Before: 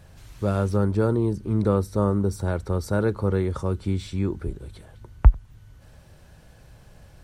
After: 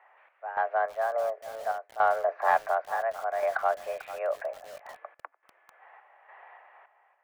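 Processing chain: mistuned SSB +230 Hz 390–2100 Hz; random-step tremolo, depth 90%; in parallel at -5 dB: saturation -26.5 dBFS, distortion -16 dB; on the sum: bit-crushed delay 444 ms, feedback 35%, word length 7-bit, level -13 dB; trim +5.5 dB

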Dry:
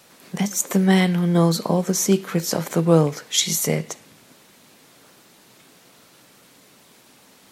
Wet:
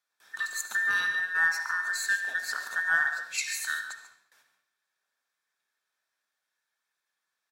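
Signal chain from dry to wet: every band turned upside down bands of 2 kHz; high-pass 1.1 kHz 6 dB/octave; gate with hold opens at -39 dBFS; treble shelf 5.9 kHz -6 dB; band-stop 2.9 kHz, Q 9.5; delay 142 ms -13 dB; on a send at -7 dB: reverberation, pre-delay 46 ms; on the sum: Chebyshev shaper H 2 -30 dB, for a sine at -4 dBFS; trim -8.5 dB

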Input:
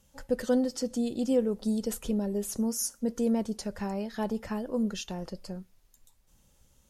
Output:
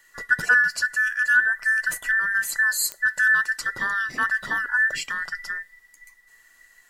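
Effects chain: every band turned upside down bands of 2 kHz; 0.86–2.31 s: peaking EQ 4.6 kHz -5.5 dB 1.4 oct; clicks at 2.92 s, -20 dBFS; trim +7.5 dB

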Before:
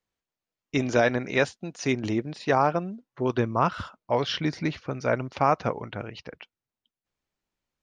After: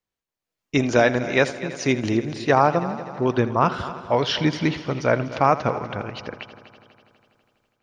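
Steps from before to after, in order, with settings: level rider gain up to 11 dB; multi-head delay 82 ms, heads first and third, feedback 63%, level -16 dB; trim -2.5 dB

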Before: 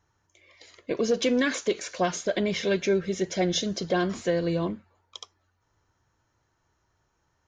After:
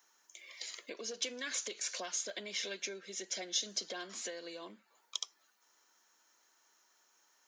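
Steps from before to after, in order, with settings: compression 3:1, threshold -43 dBFS, peak gain reduction 17 dB; elliptic high-pass 200 Hz; tilt EQ +4.5 dB/octave

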